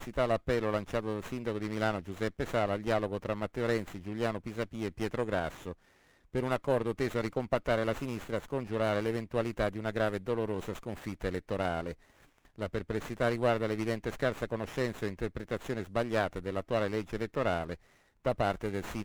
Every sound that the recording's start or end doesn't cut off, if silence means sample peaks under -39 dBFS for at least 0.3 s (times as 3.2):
6.35–11.92
12.58–17.74